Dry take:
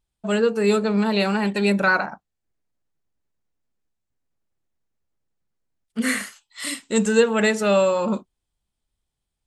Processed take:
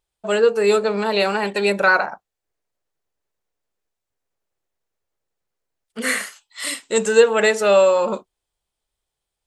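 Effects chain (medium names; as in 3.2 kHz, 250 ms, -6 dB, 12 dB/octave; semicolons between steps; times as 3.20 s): resonant low shelf 330 Hz -8 dB, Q 1.5; trim +3 dB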